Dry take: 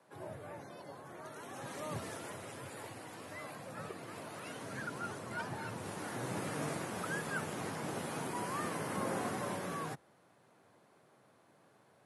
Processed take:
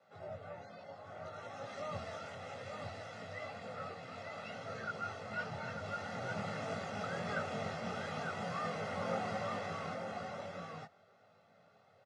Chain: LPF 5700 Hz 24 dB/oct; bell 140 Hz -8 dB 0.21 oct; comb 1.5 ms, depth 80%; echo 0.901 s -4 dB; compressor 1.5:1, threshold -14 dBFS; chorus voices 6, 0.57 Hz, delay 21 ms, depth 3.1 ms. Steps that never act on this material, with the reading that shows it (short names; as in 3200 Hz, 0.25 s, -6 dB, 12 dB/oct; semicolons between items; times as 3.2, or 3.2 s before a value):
compressor, threshold -14 dBFS: input peak -24.0 dBFS